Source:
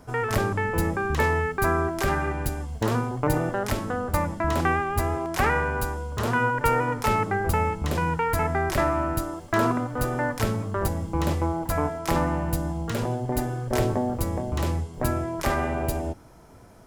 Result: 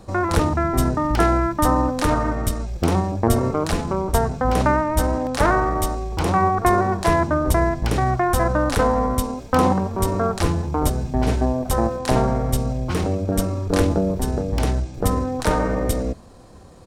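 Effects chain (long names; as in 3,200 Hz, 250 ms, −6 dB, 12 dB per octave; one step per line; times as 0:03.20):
pitch shifter −4.5 semitones
level +5.5 dB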